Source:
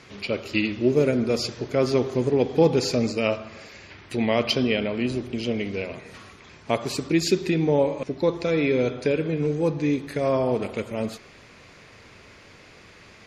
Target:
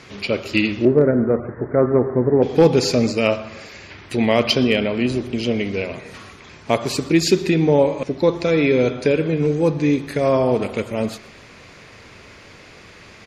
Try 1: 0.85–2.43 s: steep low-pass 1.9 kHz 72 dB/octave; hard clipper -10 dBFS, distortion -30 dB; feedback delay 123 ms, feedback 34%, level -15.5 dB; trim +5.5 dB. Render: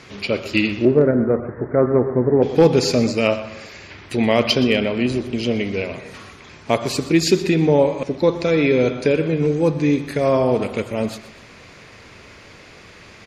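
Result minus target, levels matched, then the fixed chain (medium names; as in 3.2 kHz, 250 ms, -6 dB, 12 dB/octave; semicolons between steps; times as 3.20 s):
echo-to-direct +7.5 dB
0.85–2.43 s: steep low-pass 1.9 kHz 72 dB/octave; hard clipper -10 dBFS, distortion -30 dB; feedback delay 123 ms, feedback 34%, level -23 dB; trim +5.5 dB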